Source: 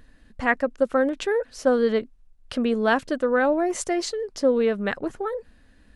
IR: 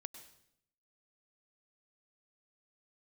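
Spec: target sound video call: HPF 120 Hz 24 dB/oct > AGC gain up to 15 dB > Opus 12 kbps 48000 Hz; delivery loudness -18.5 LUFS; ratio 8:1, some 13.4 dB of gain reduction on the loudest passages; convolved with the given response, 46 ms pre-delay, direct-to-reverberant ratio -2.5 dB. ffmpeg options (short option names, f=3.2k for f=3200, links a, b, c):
-filter_complex "[0:a]acompressor=threshold=-29dB:ratio=8,asplit=2[a][b];[1:a]atrim=start_sample=2205,adelay=46[c];[b][c]afir=irnorm=-1:irlink=0,volume=7dB[d];[a][d]amix=inputs=2:normalize=0,highpass=f=120:w=0.5412,highpass=f=120:w=1.3066,dynaudnorm=m=15dB,volume=11dB" -ar 48000 -c:a libopus -b:a 12k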